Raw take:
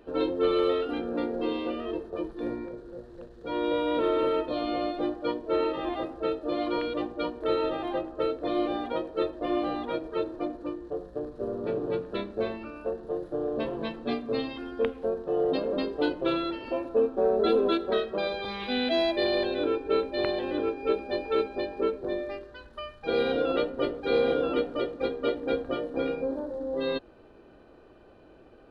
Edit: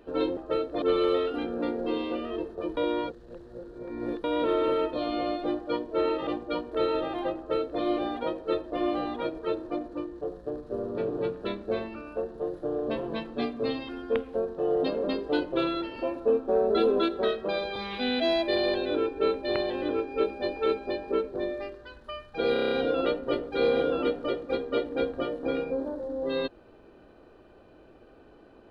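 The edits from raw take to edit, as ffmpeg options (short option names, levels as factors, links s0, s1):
-filter_complex "[0:a]asplit=12[s0][s1][s2][s3][s4][s5][s6][s7][s8][s9][s10][s11];[s0]atrim=end=0.372[s12];[s1]atrim=start=8.058:end=8.512[s13];[s2]atrim=start=0.368:end=2.322[s14];[s3]atrim=start=2.318:end=3.792,asetpts=PTS-STARTPTS,areverse[s15];[s4]atrim=start=3.788:end=5.822[s16];[s5]atrim=start=6.958:end=23.252[s17];[s6]atrim=start=23.218:end=23.252[s18];[s7]atrim=start=23.218:end=23.252[s19];[s8]atrim=start=23.218:end=23.252[s20];[s9]atrim=start=23.218:end=23.252[s21];[s10]atrim=start=23.218:end=23.252[s22];[s11]atrim=start=23.218[s23];[s12][s13]acrossfade=d=0.004:c1=hsin:c2=hsin[s24];[s24][s14]acrossfade=d=0.004:c1=hsin:c2=hsin[s25];[s25][s15]acrossfade=d=0.004:c1=hsin:c2=hsin[s26];[s26][s16]acrossfade=d=0.004:c1=hsin:c2=hsin[s27];[s27][s17]acrossfade=d=0.004:c1=hsin:c2=hsin[s28];[s28][s18]acrossfade=d=0.004:c1=hsin:c2=hsin[s29];[s29][s19]acrossfade=d=0.004:c1=hsin:c2=hsin[s30];[s30][s20]acrossfade=d=0.004:c1=hsin:c2=hsin[s31];[s31][s21]acrossfade=d=0.004:c1=hsin:c2=hsin[s32];[s32][s22]acrossfade=d=0.004:c1=hsin:c2=hsin[s33];[s33][s23]acrossfade=d=0.004:c1=hsin:c2=hsin"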